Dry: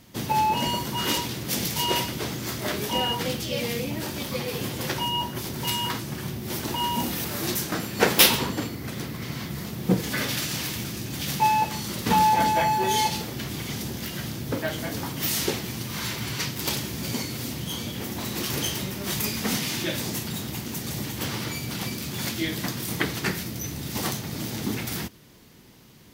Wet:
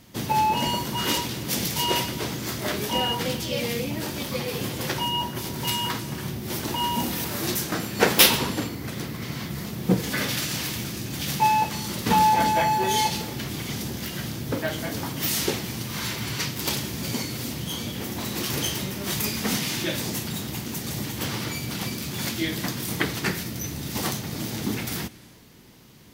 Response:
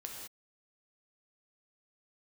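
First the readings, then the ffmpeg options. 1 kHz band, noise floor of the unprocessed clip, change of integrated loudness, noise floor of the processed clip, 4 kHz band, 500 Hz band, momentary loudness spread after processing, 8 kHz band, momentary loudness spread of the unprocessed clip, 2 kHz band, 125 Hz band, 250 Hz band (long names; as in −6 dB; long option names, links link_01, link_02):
+0.5 dB, −36 dBFS, +0.5 dB, −35 dBFS, +1.0 dB, +1.0 dB, 9 LU, +1.0 dB, 9 LU, +1.0 dB, +0.5 dB, +1.0 dB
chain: -filter_complex "[0:a]asplit=2[link_01][link_02];[1:a]atrim=start_sample=2205,asetrate=25137,aresample=44100[link_03];[link_02][link_03]afir=irnorm=-1:irlink=0,volume=-18dB[link_04];[link_01][link_04]amix=inputs=2:normalize=0"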